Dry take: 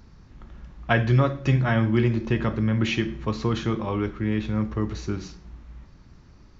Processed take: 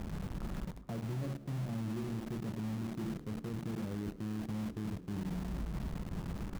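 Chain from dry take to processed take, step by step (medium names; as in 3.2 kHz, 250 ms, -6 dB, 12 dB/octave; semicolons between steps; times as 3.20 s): low-pass 1.2 kHz 12 dB/octave; hum notches 60/120/180/240/300 Hz; low-pass that closes with the level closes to 380 Hz, closed at -31.5 dBFS; peaking EQ 180 Hz +10 dB 0.47 oct; reverse; compression 16:1, threshold -42 dBFS, peak gain reduction 28.5 dB; reverse; peak limiter -41.5 dBFS, peak gain reduction 6.5 dB; in parallel at -4 dB: bit crusher 8-bit; on the sum: frequency-shifting echo 106 ms, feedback 42%, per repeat +74 Hz, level -17.5 dB; trim +5.5 dB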